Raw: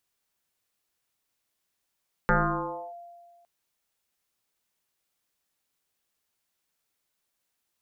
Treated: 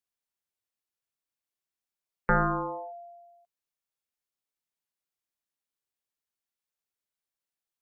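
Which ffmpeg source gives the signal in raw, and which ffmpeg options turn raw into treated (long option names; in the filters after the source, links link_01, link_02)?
-f lavfi -i "aevalsrc='0.141*pow(10,-3*t/1.71)*sin(2*PI*692*t+5.4*clip(1-t/0.65,0,1)*sin(2*PI*0.26*692*t))':duration=1.16:sample_rate=44100"
-af "afftdn=noise_reduction=13:noise_floor=-44"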